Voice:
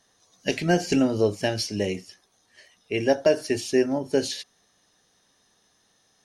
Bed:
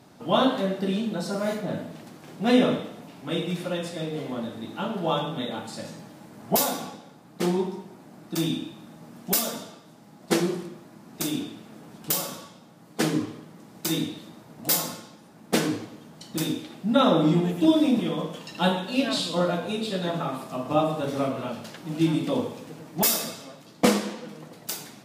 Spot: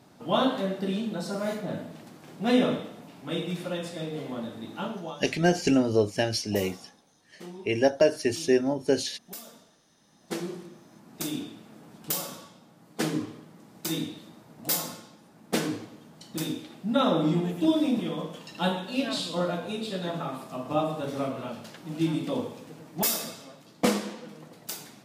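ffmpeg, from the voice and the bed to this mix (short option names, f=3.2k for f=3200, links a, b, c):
-filter_complex "[0:a]adelay=4750,volume=-1dB[a];[1:a]volume=11dB,afade=t=out:st=4.85:d=0.31:silence=0.177828,afade=t=in:st=9.94:d=1.17:silence=0.199526[b];[a][b]amix=inputs=2:normalize=0"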